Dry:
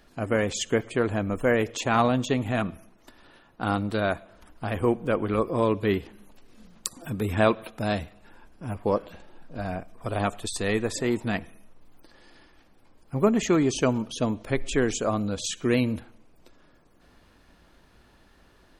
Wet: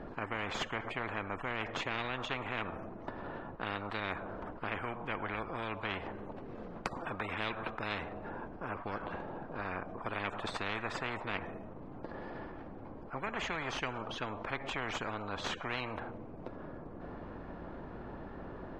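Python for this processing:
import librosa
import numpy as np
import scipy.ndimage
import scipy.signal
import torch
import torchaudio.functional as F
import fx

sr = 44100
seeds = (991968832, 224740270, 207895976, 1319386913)

y = fx.tracing_dist(x, sr, depth_ms=0.11)
y = scipy.signal.sosfilt(scipy.signal.butter(2, 1000.0, 'lowpass', fs=sr, output='sos'), y)
y = fx.spectral_comp(y, sr, ratio=10.0)
y = y * 10.0 ** (-7.0 / 20.0)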